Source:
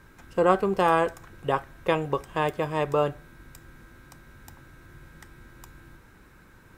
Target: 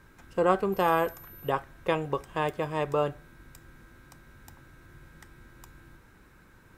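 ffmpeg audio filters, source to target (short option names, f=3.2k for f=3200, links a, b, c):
-filter_complex "[0:a]asettb=1/sr,asplit=3[a][b][c];[a]atrim=end=0.724[d];[b]atrim=start=0.72:end=1.5,asetpts=PTS-STARTPTS,afade=t=in:d=0.004:c=qsin,afade=t=out:st=0.776:d=0.004:c=qsin,aeval=exprs='val(0)+0.00562*sin(2*PI*13000*n/s)':c=same[e];[c]atrim=start=1.496[f];[d][e]acrossfade=d=0.004:c1=hsin:c2=qsin[g];[g][f]acrossfade=d=0.004:c1=qsin:c2=hsin,volume=-3dB"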